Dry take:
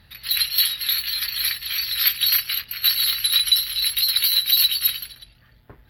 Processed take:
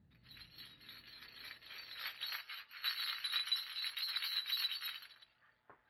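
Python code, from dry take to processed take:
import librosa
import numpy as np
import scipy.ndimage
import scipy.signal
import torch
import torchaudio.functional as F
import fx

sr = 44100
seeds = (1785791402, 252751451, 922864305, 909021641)

y = fx.filter_sweep_bandpass(x, sr, from_hz=200.0, to_hz=1200.0, start_s=0.47, end_s=2.8, q=1.2)
y = fx.ensemble(y, sr, at=(2.37, 2.77), fade=0.02)
y = y * 10.0 ** (-7.5 / 20.0)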